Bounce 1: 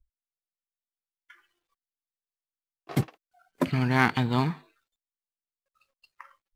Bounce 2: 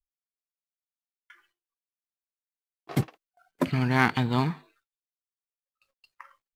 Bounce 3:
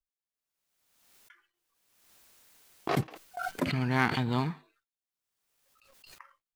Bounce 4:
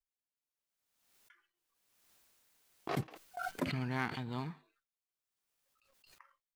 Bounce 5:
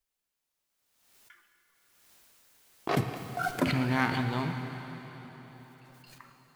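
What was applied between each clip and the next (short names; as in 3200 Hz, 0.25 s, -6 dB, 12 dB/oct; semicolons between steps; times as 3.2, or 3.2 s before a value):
gate with hold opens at -55 dBFS
backwards sustainer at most 42 dB/s; gain -5 dB
tremolo 0.59 Hz, depth 54%; gain -4.5 dB
plate-style reverb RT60 4.4 s, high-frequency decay 0.95×, DRR 5.5 dB; gain +8 dB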